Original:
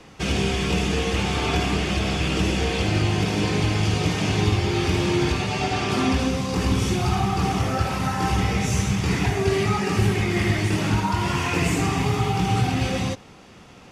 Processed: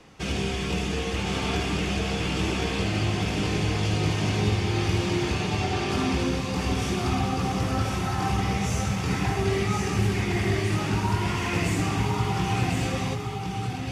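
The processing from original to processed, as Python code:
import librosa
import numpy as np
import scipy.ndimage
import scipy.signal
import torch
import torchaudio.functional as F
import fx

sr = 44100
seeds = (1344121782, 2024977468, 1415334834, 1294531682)

y = x + 10.0 ** (-4.0 / 20.0) * np.pad(x, (int(1061 * sr / 1000.0), 0))[:len(x)]
y = F.gain(torch.from_numpy(y), -5.0).numpy()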